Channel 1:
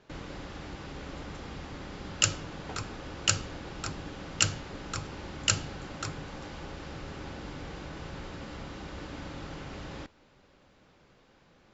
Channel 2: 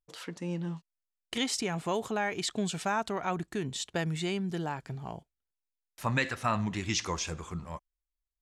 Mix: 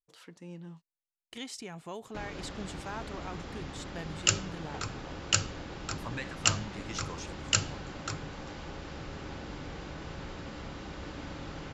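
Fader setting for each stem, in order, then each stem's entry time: -0.5 dB, -10.5 dB; 2.05 s, 0.00 s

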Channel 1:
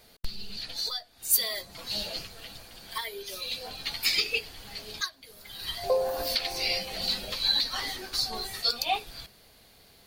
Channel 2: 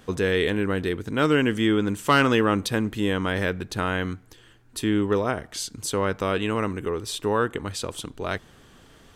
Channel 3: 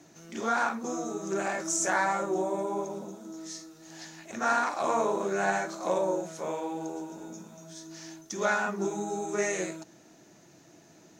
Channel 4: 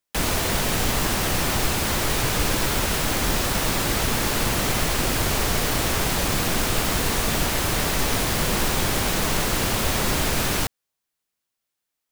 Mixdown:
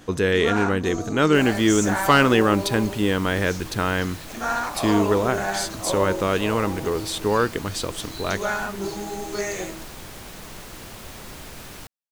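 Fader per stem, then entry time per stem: -15.0 dB, +2.5 dB, +1.0 dB, -16.5 dB; 0.70 s, 0.00 s, 0.00 s, 1.20 s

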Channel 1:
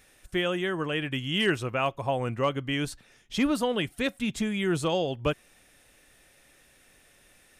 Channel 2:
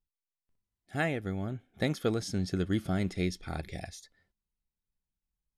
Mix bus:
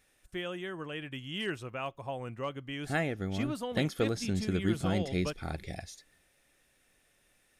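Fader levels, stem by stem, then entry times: -10.0 dB, -0.5 dB; 0.00 s, 1.95 s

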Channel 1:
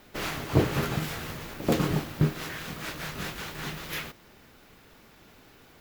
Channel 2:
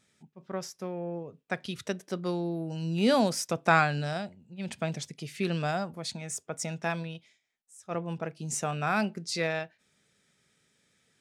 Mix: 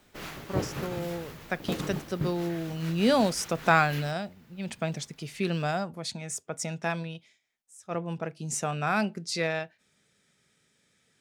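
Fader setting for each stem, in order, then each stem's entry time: -8.0 dB, +1.0 dB; 0.00 s, 0.00 s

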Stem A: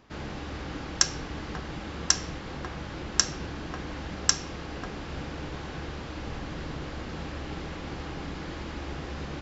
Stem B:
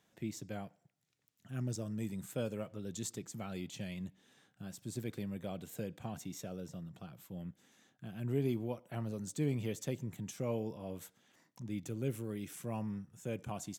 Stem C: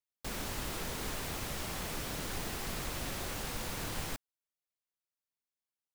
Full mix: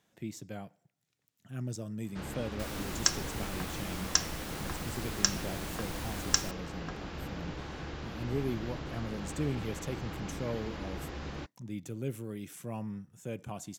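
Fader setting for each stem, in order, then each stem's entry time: -4.0 dB, +0.5 dB, -3.0 dB; 2.05 s, 0.00 s, 2.35 s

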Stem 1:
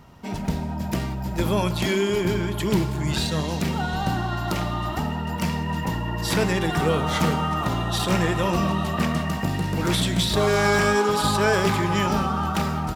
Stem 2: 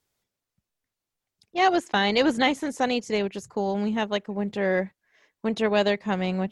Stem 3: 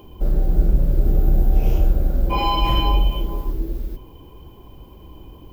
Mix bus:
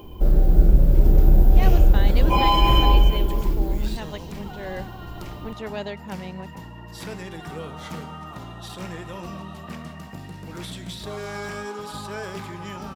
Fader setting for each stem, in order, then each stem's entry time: -13.0 dB, -10.0 dB, +2.0 dB; 0.70 s, 0.00 s, 0.00 s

